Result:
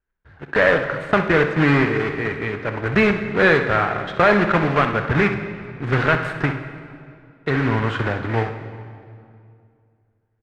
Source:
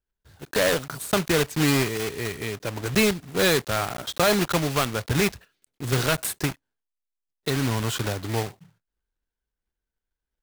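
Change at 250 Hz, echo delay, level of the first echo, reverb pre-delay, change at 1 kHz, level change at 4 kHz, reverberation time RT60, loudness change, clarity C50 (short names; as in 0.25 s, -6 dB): +5.0 dB, 63 ms, -11.0 dB, 13 ms, +8.0 dB, -5.0 dB, 2.3 s, +5.0 dB, 7.0 dB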